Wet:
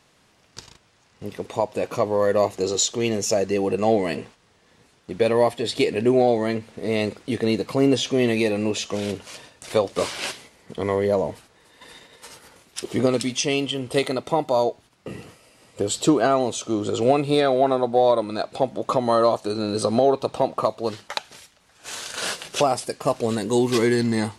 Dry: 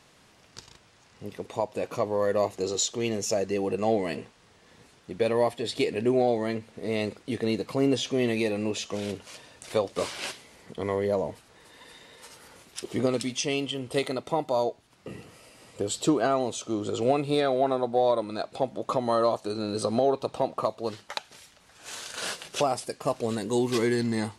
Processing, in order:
noise gate −50 dBFS, range −7 dB
level +5.5 dB

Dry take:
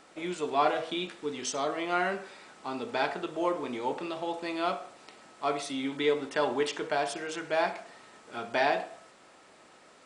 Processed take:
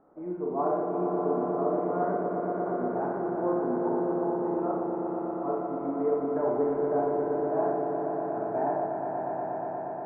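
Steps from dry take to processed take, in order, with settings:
Bessel low-pass filter 710 Hz, order 6
echo that builds up and dies away 119 ms, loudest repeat 5, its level −7 dB
four-comb reverb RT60 0.84 s, combs from 25 ms, DRR −1 dB
level −1.5 dB

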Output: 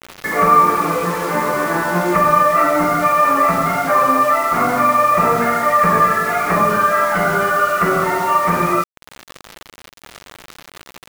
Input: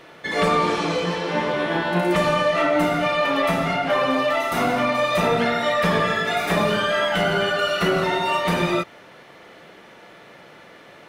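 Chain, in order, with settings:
Butterworth low-pass 2,400 Hz 48 dB per octave
parametric band 1,200 Hz +11 dB 0.37 octaves
in parallel at +1 dB: downward compressor 5 to 1, threshold −29 dBFS, peak gain reduction 18 dB
on the sum: bit reduction 5 bits

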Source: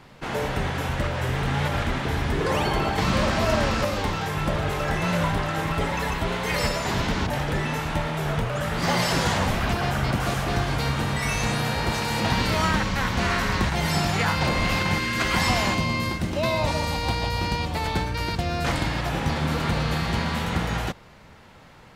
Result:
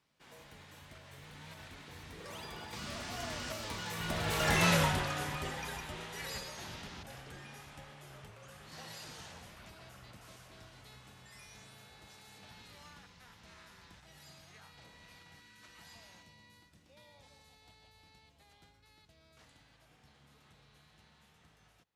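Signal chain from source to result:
source passing by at 0:04.63, 29 m/s, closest 6.4 metres
high-pass filter 48 Hz
high-shelf EQ 2,600 Hz +11.5 dB
level −4 dB

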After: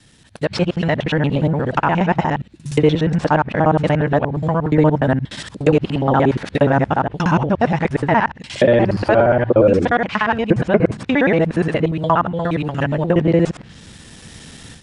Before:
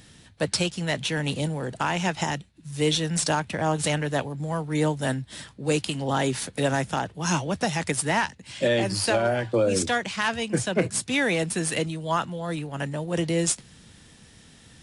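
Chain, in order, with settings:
reversed piece by piece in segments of 59 ms
automatic gain control gain up to 14 dB
treble cut that deepens with the level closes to 1,500 Hz, closed at −13 dBFS

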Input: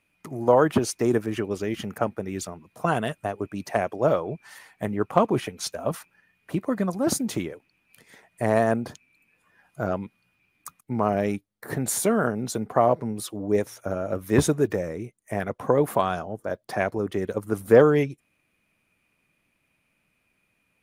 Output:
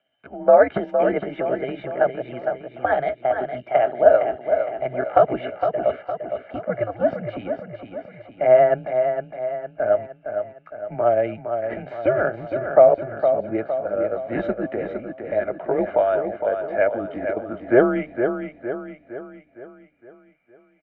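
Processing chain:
pitch glide at a constant tempo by +4.5 semitones ending unshifted
comb filter 1.3 ms, depth 75%
single-sideband voice off tune −120 Hz 290–3,000 Hz
hollow resonant body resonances 270/620/1,700 Hz, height 12 dB, ringing for 30 ms
on a send: repeating echo 461 ms, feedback 49%, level −7 dB
on the sum: level −3 dB

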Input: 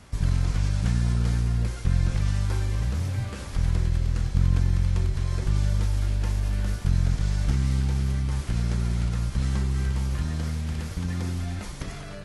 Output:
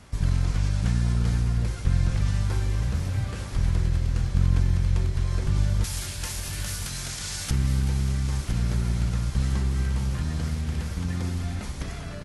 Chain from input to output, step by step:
0:05.84–0:07.51: spectral tilt +4.5 dB per octave
repeating echo 1,010 ms, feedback 54%, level −12 dB

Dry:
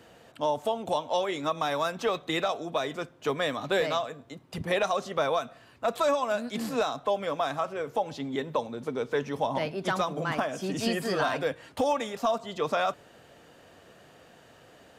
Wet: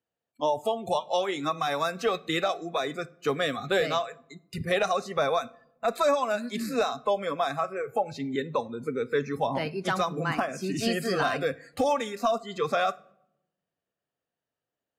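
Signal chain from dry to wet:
noise reduction from a noise print of the clip's start 26 dB
noise gate −55 dBFS, range −11 dB
rectangular room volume 2,400 cubic metres, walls furnished, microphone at 0.3 metres
level +1.5 dB

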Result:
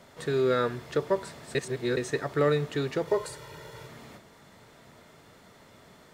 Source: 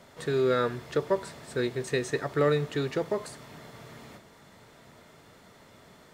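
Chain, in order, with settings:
0:01.55–0:01.97: reverse
0:03.07–0:03.87: comb filter 2.1 ms, depth 95%

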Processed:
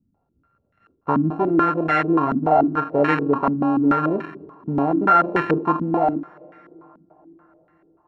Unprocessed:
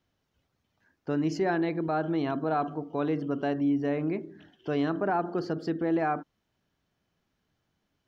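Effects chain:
samples sorted by size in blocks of 32 samples
speech leveller 0.5 s
on a send at −22.5 dB: convolution reverb RT60 5.5 s, pre-delay 3 ms
on the sum: low-pass on a step sequencer 6.9 Hz 230–1,900 Hz
level +6 dB

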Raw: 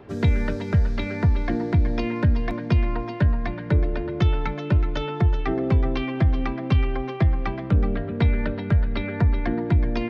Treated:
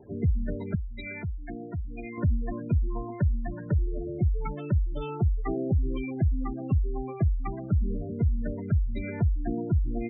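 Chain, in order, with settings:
gate on every frequency bin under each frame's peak −15 dB strong
0:00.75–0:02.18: tilt shelving filter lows −9 dB, about 1,400 Hz
level −5 dB

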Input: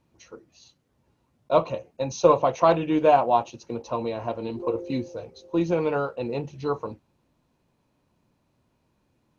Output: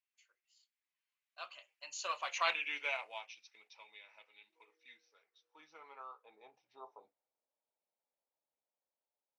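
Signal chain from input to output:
source passing by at 0:02.48, 31 m/s, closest 8.8 metres
high-pass filter sweep 2,200 Hz → 600 Hz, 0:04.55–0:07.20
level −2 dB

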